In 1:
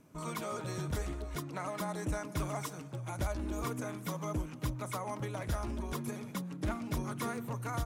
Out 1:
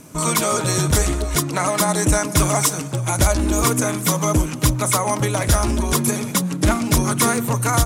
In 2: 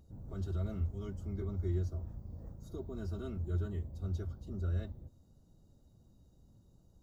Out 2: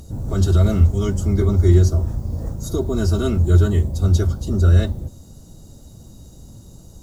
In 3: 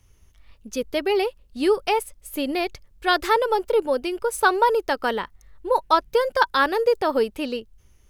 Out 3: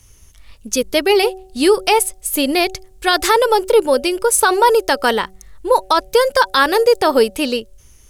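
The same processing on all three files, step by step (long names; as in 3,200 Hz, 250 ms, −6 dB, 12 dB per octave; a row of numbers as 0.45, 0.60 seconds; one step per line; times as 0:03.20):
parametric band 8,700 Hz +11 dB 1.8 octaves
hum removal 188.7 Hz, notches 4
boost into a limiter +10 dB
normalise the peak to −3 dBFS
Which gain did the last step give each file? +7.5, +11.0, −2.0 decibels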